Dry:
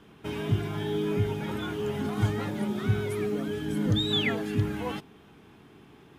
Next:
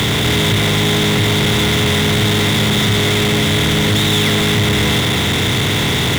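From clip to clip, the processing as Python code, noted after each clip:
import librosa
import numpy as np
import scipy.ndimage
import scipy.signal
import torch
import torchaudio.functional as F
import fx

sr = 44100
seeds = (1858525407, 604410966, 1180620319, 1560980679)

y = fx.bin_compress(x, sr, power=0.2)
y = y + 10.0 ** (-10.5 / 20.0) * np.pad(y, (int(91 * sr / 1000.0), 0))[:len(y)]
y = fx.power_curve(y, sr, exponent=0.35)
y = y * 10.0 ** (-2.5 / 20.0)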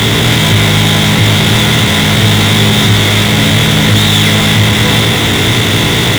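y = fx.doubler(x, sr, ms=18.0, db=-4)
y = y * 10.0 ** (4.5 / 20.0)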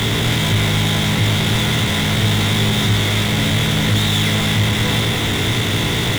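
y = fx.low_shelf(x, sr, hz=61.0, db=7.5)
y = y * 10.0 ** (-9.0 / 20.0)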